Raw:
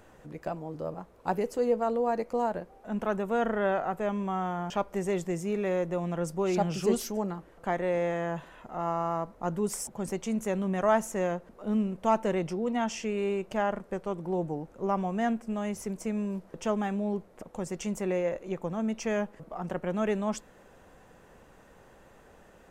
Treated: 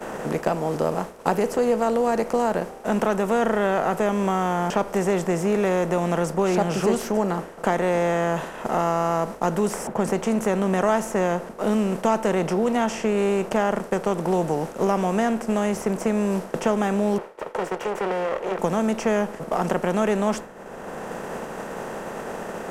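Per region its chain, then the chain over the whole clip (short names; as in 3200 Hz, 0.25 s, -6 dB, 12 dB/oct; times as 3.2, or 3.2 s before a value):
17.18–18.59 minimum comb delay 2.1 ms + three-band isolator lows -20 dB, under 330 Hz, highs -21 dB, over 3000 Hz + compressor 3:1, threshold -41 dBFS
whole clip: per-bin compression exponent 0.6; expander -31 dBFS; three-band squash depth 70%; gain +3.5 dB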